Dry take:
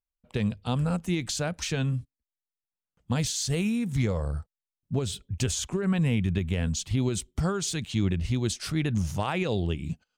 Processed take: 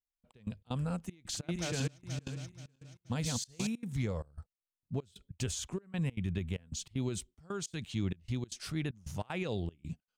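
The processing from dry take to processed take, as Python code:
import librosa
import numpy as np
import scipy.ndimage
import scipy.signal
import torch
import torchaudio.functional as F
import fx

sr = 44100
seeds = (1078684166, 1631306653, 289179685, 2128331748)

y = fx.reverse_delay_fb(x, sr, ms=240, feedback_pct=55, wet_db=-2.0, at=(1.08, 3.67))
y = fx.step_gate(y, sr, bpm=192, pattern='xxxx..xx.x', floor_db=-24.0, edge_ms=4.5)
y = y * 10.0 ** (-8.0 / 20.0)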